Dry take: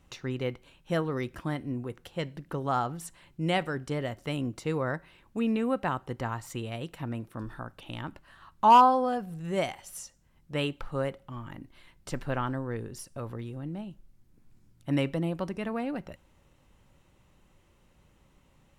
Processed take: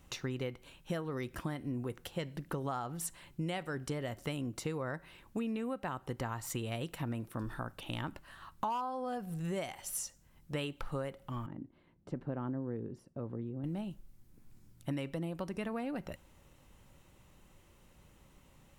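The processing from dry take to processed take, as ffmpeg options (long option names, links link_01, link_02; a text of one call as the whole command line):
ffmpeg -i in.wav -filter_complex "[0:a]asettb=1/sr,asplit=3[link_01][link_02][link_03];[link_01]atrim=end=11.464[link_04];[link_02]atrim=start=11.46:end=13.64,asetpts=PTS-STARTPTS,afade=type=in:duration=0.004:curve=qsin,afade=type=out:start_time=2.176:duration=0.004:curve=qsin,bandpass=frequency=250:width_type=q:width=0.85[link_05];[link_03]atrim=start=13.636[link_06];[link_04][link_05]acrossfade=duration=0.004:curve1=hsin:curve2=qsin[link_07];[link_07][link_06]acrossfade=duration=0.004:curve1=qsin:curve2=hsin,highshelf=frequency=8200:gain=8,acompressor=threshold=-34dB:ratio=16,volume=1dB" out.wav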